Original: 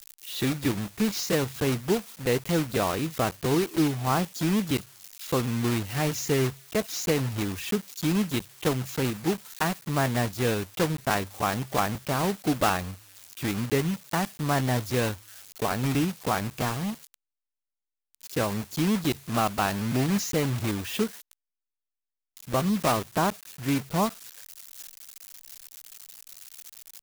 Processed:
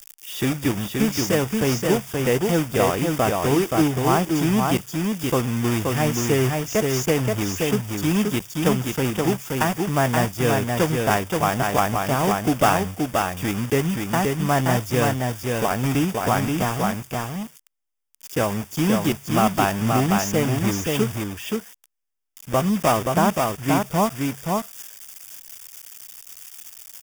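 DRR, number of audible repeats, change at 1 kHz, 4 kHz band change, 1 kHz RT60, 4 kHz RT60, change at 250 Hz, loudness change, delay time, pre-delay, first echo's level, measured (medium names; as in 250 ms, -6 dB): no reverb, 1, +7.0 dB, +4.0 dB, no reverb, no reverb, +5.5 dB, +5.5 dB, 526 ms, no reverb, -3.5 dB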